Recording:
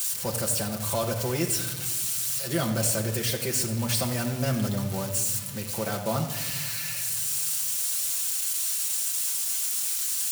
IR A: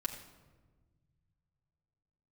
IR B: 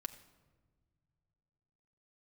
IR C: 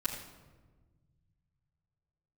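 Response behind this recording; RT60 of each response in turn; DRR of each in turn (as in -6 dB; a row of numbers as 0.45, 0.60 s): A; 1.4 s, not exponential, 1.3 s; -0.5, 6.5, -10.5 dB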